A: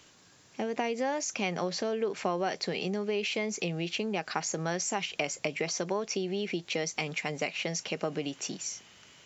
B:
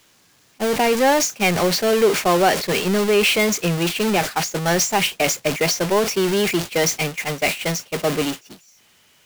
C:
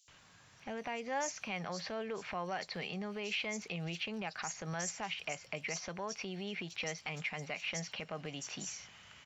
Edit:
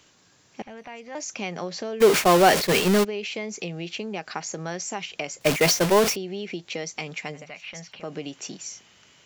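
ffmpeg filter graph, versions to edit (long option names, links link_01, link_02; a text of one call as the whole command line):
ffmpeg -i take0.wav -i take1.wav -i take2.wav -filter_complex "[2:a]asplit=2[link_01][link_02];[1:a]asplit=2[link_03][link_04];[0:a]asplit=5[link_05][link_06][link_07][link_08][link_09];[link_05]atrim=end=0.622[link_10];[link_01]atrim=start=0.618:end=1.152[link_11];[link_06]atrim=start=1.148:end=2.02[link_12];[link_03]atrim=start=2:end=3.05[link_13];[link_07]atrim=start=3.03:end=5.412[link_14];[link_04]atrim=start=5.408:end=6.162[link_15];[link_08]atrim=start=6.158:end=7.47[link_16];[link_02]atrim=start=7.31:end=8.1[link_17];[link_09]atrim=start=7.94[link_18];[link_10][link_11]acrossfade=duration=0.004:curve1=hsin:curve2=hsin[link_19];[link_19][link_12]acrossfade=duration=0.004:curve1=hsin:curve2=hsin[link_20];[link_20][link_13]acrossfade=duration=0.02:curve1=tri:curve2=tri[link_21];[link_21][link_14]acrossfade=duration=0.02:curve1=tri:curve2=tri[link_22];[link_22][link_15]acrossfade=duration=0.004:curve1=hsin:curve2=hsin[link_23];[link_23][link_16]acrossfade=duration=0.004:curve1=hsin:curve2=hsin[link_24];[link_24][link_17]acrossfade=duration=0.16:curve1=tri:curve2=tri[link_25];[link_25][link_18]acrossfade=duration=0.16:curve1=tri:curve2=tri" out.wav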